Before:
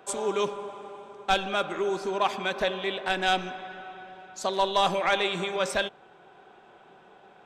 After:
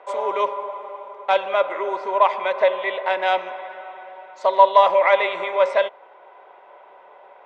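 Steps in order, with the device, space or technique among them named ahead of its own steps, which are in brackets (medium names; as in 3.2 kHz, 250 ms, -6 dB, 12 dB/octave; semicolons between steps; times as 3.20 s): tin-can telephone (band-pass 540–3100 Hz; small resonant body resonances 580/950/2000 Hz, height 15 dB, ringing for 20 ms)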